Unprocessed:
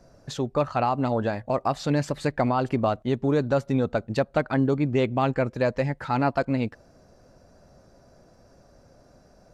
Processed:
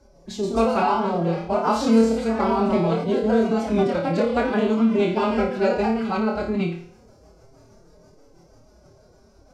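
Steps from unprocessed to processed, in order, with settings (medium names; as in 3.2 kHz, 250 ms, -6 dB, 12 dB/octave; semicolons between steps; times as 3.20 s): ever faster or slower copies 160 ms, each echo +2 st, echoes 3, each echo -6 dB; rotary cabinet horn 1 Hz, later 6.3 Hz, at 2.15 s; flutter echo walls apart 4.7 m, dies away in 0.54 s; formant-preserving pitch shift +7.5 st; band-stop 1.8 kHz, Q 6.7; trim +2 dB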